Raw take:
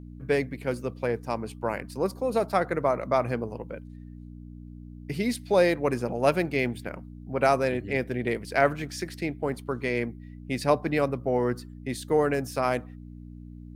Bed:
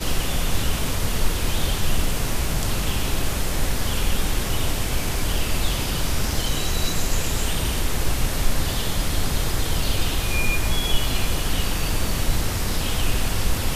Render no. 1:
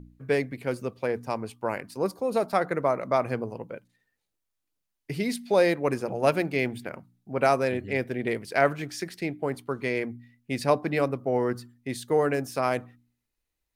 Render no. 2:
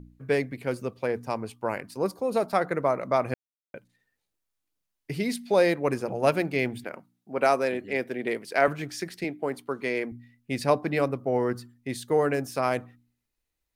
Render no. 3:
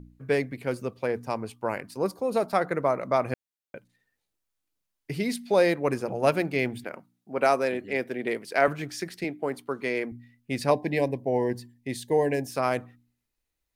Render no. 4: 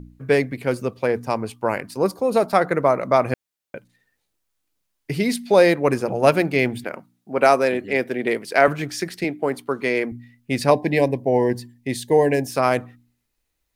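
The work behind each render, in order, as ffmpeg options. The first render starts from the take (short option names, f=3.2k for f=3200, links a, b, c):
-af "bandreject=f=60:t=h:w=4,bandreject=f=120:t=h:w=4,bandreject=f=180:t=h:w=4,bandreject=f=240:t=h:w=4,bandreject=f=300:t=h:w=4"
-filter_complex "[0:a]asettb=1/sr,asplit=3[a][b][c];[a]atrim=end=6.844[d];[b]atrim=start=6.84:end=8.68,asetpts=PTS-STARTPTS,afade=t=in:d=0.004:c=qsin,afade=t=out:st=1.836:d=0.004:c=qsin,highpass=230[e];[c]atrim=start=8.676[f];[d][e]acrossfade=d=0.004:c1=hsin:c2=qsin[g];[g][f]acrossfade=d=0.004:c1=qsin:c2=hsin,asettb=1/sr,asplit=3[h][i][j];[h]atrim=end=9.244[k];[i]atrim=start=9.24:end=10.12,asetpts=PTS-STARTPTS,afade=t=in:d=0.004:c=qsin,afade=t=out:st=0.876:d=0.004:c=qsin,highpass=200[l];[j]atrim=start=10.116[m];[k][l]acrossfade=d=0.004:c1=hsin:c2=qsin[n];[n][m]acrossfade=d=0.004:c1=qsin:c2=hsin,asplit=3[o][p][q];[o]atrim=end=3.34,asetpts=PTS-STARTPTS,afade=t=out:st=3.336:d=0.004:c=hsin[r];[p]atrim=start=3.34:end=3.74,asetpts=PTS-STARTPTS,volume=0[s];[q]atrim=start=3.74,asetpts=PTS-STARTPTS,afade=t=in:d=0.004:c=hsin[t];[r][s][t]concat=n=3:v=0:a=1"
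-filter_complex "[0:a]asettb=1/sr,asplit=3[a][b][c];[a]atrim=end=10.714[d];[b]atrim=start=10.71:end=12.5,asetpts=PTS-STARTPTS,afade=t=in:d=0.004:c=qsin,afade=t=out:st=1.786:d=0.004:c=qsin,asuperstop=centerf=1300:order=8:qfactor=2.2[e];[c]atrim=start=12.496[f];[d][e]acrossfade=d=0.004:c1=hsin:c2=qsin[g];[g][f]acrossfade=d=0.004:c1=qsin:c2=hsin"
-af "volume=7dB,alimiter=limit=-2dB:level=0:latency=1"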